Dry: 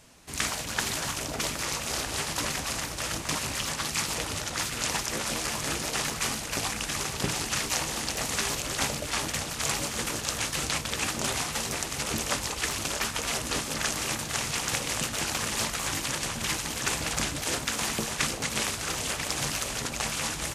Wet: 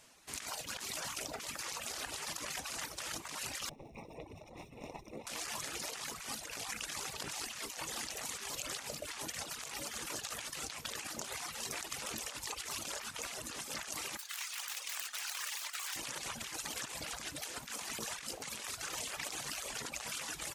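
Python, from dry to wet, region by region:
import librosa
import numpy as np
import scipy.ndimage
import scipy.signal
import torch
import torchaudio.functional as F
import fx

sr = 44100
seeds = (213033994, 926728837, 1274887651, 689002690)

y = fx.chain(x, sr, fx.lower_of_two(delay_ms=0.35),
    fx.moving_average(points=28), at=(3.69, 5.27))
y = fx.chain(y, sr, fx.self_delay(depth_ms=0.09),
    fx.highpass(hz=1200.0, slope=12), at=(14.17, 15.96))
y = fx.dereverb_blind(y, sr, rt60_s=1.0)
y = fx.low_shelf(y, sr, hz=300.0, db=-11.5)
y = fx.over_compress(y, sr, threshold_db=-36.0, ratio=-1.0)
y = y * 10.0 ** (-6.0 / 20.0)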